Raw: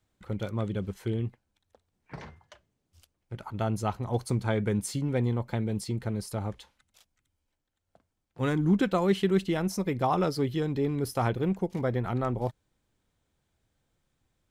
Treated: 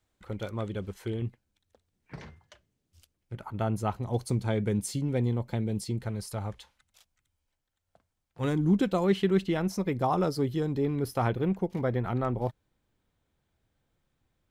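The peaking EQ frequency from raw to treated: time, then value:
peaking EQ -5.5 dB 1.5 oct
160 Hz
from 1.22 s 880 Hz
from 3.35 s 5.1 kHz
from 3.96 s 1.3 kHz
from 6.04 s 290 Hz
from 8.44 s 1.6 kHz
from 9.04 s 9.9 kHz
from 9.92 s 2.5 kHz
from 10.83 s 7.7 kHz

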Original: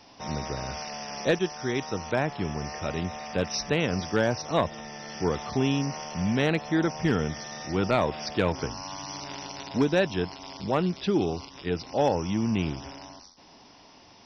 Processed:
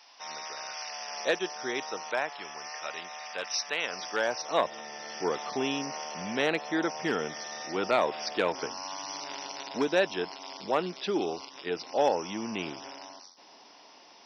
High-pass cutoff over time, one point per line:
0.77 s 1 kHz
1.59 s 400 Hz
2.46 s 920 Hz
3.74 s 920 Hz
4.78 s 390 Hz

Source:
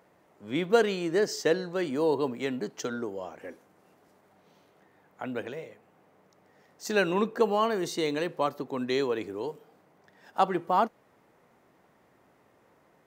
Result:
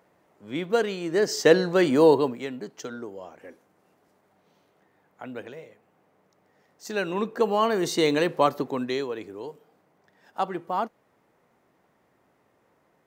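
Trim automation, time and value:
1.00 s -1 dB
1.57 s +9.5 dB
2.07 s +9.5 dB
2.49 s -3 dB
6.99 s -3 dB
8.01 s +7 dB
8.62 s +7 dB
9.06 s -3 dB

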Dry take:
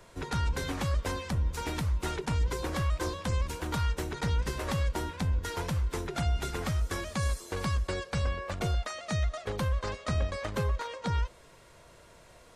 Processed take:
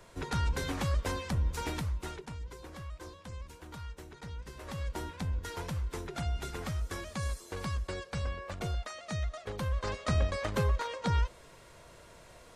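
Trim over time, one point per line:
1.66 s -1 dB
2.12 s -8 dB
2.38 s -14 dB
4.47 s -14 dB
4.98 s -5 dB
9.58 s -5 dB
9.98 s +1 dB

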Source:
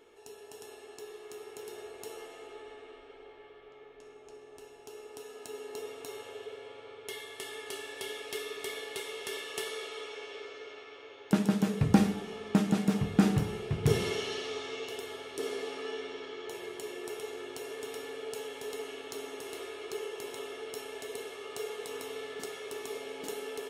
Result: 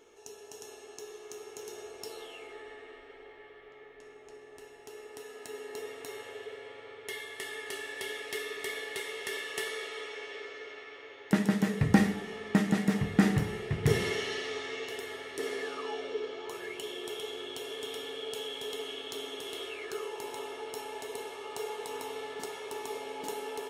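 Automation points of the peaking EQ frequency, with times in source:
peaking EQ +13.5 dB 0.23 oct
1.97 s 6.2 kHz
2.53 s 1.9 kHz
15.61 s 1.9 kHz
16.21 s 390 Hz
16.84 s 3.3 kHz
19.66 s 3.3 kHz
20.11 s 890 Hz

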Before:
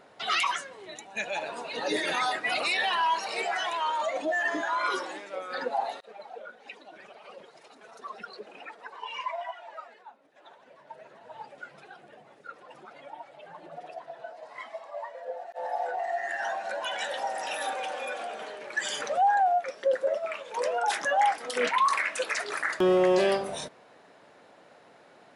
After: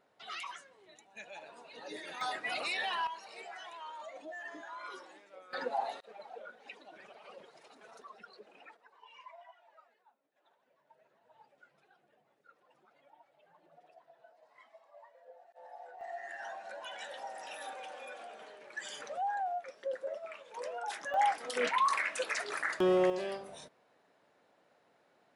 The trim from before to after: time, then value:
-16 dB
from 2.21 s -8 dB
from 3.07 s -17 dB
from 5.53 s -5 dB
from 8.02 s -11.5 dB
from 8.77 s -19 dB
from 16.01 s -12 dB
from 21.14 s -5 dB
from 23.10 s -14 dB

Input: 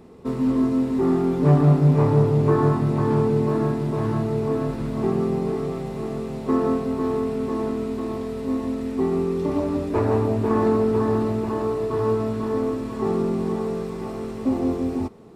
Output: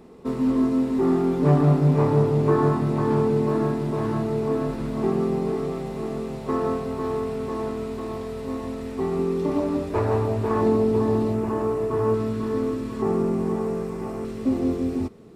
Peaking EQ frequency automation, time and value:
peaking EQ -7 dB 0.84 oct
100 Hz
from 6.35 s 270 Hz
from 9.19 s 83 Hz
from 9.83 s 260 Hz
from 10.61 s 1.4 kHz
from 11.34 s 4 kHz
from 12.14 s 750 Hz
from 13.02 s 3.8 kHz
from 14.25 s 860 Hz

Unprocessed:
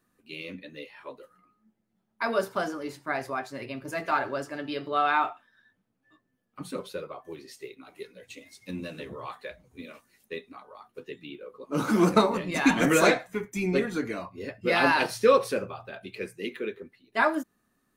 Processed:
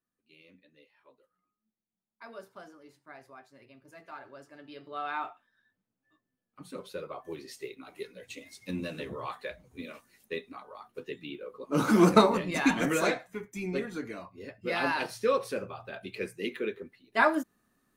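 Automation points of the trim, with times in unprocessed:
4.17 s -19 dB
5.28 s -9 dB
6.63 s -9 dB
7.20 s +1 dB
12.32 s +1 dB
12.98 s -7 dB
15.39 s -7 dB
15.97 s 0 dB

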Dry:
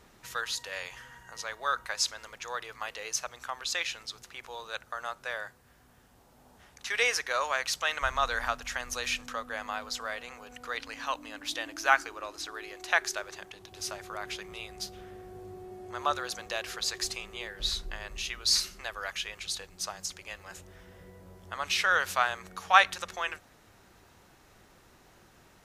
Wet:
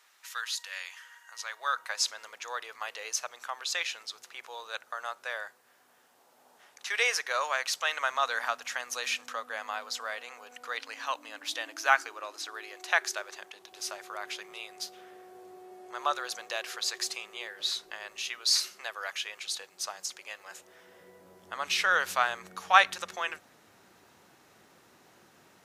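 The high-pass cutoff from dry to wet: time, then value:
1.25 s 1.3 kHz
2.03 s 450 Hz
20.58 s 450 Hz
21.92 s 160 Hz

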